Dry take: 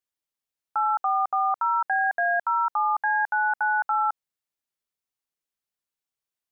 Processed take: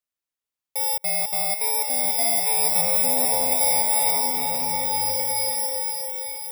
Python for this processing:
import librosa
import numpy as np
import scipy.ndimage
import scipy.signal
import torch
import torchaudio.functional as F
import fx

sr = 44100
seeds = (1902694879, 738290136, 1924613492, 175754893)

y = fx.bit_reversed(x, sr, seeds[0], block=32)
y = fx.comb(y, sr, ms=7.0, depth=0.64, at=(0.8, 1.22))
y = fx.lowpass(y, sr, hz=1100.0, slope=12, at=(2.81, 3.52))
y = fx.rider(y, sr, range_db=3, speed_s=0.5)
y = fx.echo_thinned(y, sr, ms=455, feedback_pct=59, hz=520.0, wet_db=-7.0)
y = fx.rev_bloom(y, sr, seeds[1], attack_ms=1680, drr_db=-2.0)